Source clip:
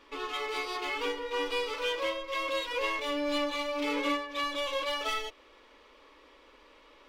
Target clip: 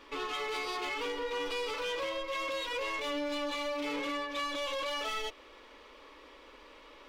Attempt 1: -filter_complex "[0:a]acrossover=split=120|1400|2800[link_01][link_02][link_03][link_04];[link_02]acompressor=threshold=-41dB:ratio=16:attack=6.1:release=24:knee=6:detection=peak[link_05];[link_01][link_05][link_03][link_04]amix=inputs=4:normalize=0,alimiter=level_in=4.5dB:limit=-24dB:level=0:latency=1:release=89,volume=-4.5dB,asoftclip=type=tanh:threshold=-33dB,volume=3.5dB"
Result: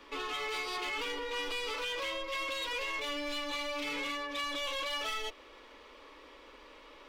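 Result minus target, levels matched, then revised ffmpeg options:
downward compressor: peak gain reduction +13 dB
-af "alimiter=level_in=4.5dB:limit=-24dB:level=0:latency=1:release=89,volume=-4.5dB,asoftclip=type=tanh:threshold=-33dB,volume=3.5dB"

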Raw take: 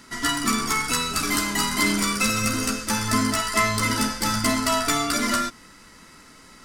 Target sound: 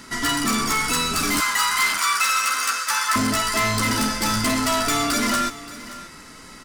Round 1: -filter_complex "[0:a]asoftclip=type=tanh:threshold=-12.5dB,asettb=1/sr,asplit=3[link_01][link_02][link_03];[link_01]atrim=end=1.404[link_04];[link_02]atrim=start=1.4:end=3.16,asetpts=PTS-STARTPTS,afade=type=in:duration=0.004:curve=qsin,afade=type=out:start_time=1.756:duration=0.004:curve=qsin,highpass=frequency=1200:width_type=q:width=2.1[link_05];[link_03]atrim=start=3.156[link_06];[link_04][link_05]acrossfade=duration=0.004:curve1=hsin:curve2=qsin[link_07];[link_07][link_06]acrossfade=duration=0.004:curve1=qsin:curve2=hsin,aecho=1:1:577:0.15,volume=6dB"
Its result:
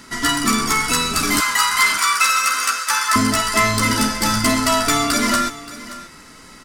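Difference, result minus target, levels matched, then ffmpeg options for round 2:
soft clipping: distortion −13 dB
-filter_complex "[0:a]asoftclip=type=tanh:threshold=-23.5dB,asettb=1/sr,asplit=3[link_01][link_02][link_03];[link_01]atrim=end=1.404[link_04];[link_02]atrim=start=1.4:end=3.16,asetpts=PTS-STARTPTS,afade=type=in:duration=0.004:curve=qsin,afade=type=out:start_time=1.756:duration=0.004:curve=qsin,highpass=frequency=1200:width_type=q:width=2.1[link_05];[link_03]atrim=start=3.156[link_06];[link_04][link_05]acrossfade=duration=0.004:curve1=hsin:curve2=qsin[link_07];[link_07][link_06]acrossfade=duration=0.004:curve1=qsin:curve2=hsin,aecho=1:1:577:0.15,volume=6dB"

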